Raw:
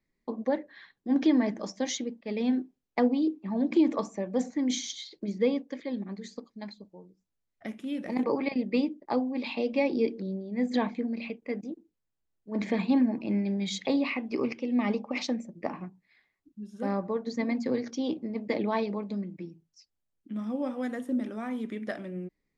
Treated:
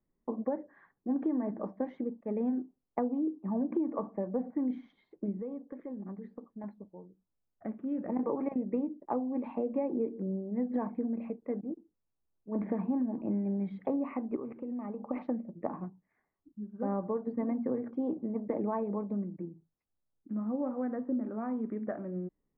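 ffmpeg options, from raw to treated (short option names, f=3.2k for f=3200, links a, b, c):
-filter_complex "[0:a]asettb=1/sr,asplit=3[a][b][c];[a]atrim=end=5.394[d];[b]atrim=start=5.39:end=6.64,asetpts=PTS-STARTPTS,afade=t=in:d=0.004:c=qsin,afade=t=out:st=1.246:d=0.004:c=qsin,acompressor=threshold=-38dB:ratio=4:attack=3.2:release=140:knee=1:detection=peak[e];[c]atrim=start=6.636[f];[d][e]acrossfade=d=0.004:c1=hsin:c2=qsin[g];[g][f]acrossfade=d=0.004:c1=qsin:c2=hsin,asettb=1/sr,asplit=3[h][i][j];[h]atrim=end=14.364[k];[i]atrim=start=14.36:end=15.07,asetpts=PTS-STARTPTS,afade=t=in:d=0.004:c=qsin,afade=t=out:st=0.706:d=0.004:c=qsin,acompressor=threshold=-35dB:ratio=6:attack=3.2:release=140:knee=1:detection=peak[l];[j]atrim=start=15.066[m];[k][l]acrossfade=d=0.004:c1=hsin:c2=qsin[n];[n][m]acrossfade=d=0.004:c1=qsin:c2=hsin,lowpass=f=1.3k:w=0.5412,lowpass=f=1.3k:w=1.3066,acompressor=threshold=-28dB:ratio=6"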